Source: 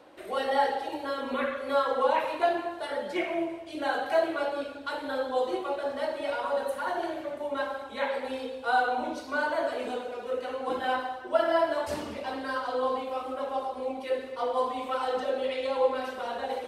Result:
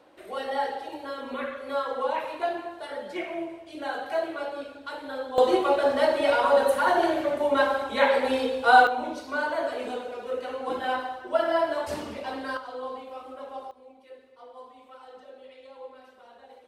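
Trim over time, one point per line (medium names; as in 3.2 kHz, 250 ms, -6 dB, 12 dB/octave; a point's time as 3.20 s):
-3 dB
from 5.38 s +9 dB
from 8.87 s +0.5 dB
from 12.57 s -7 dB
from 13.71 s -18 dB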